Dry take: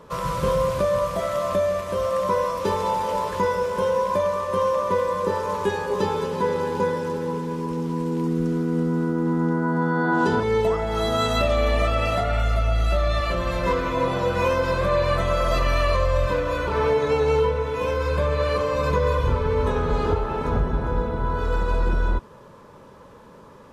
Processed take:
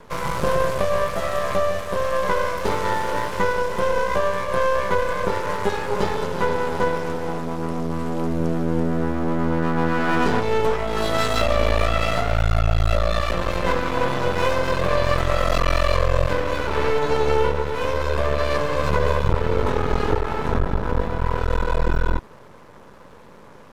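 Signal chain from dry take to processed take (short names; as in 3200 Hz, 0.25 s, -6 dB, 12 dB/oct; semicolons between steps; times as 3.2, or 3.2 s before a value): half-wave rectifier; gain +5 dB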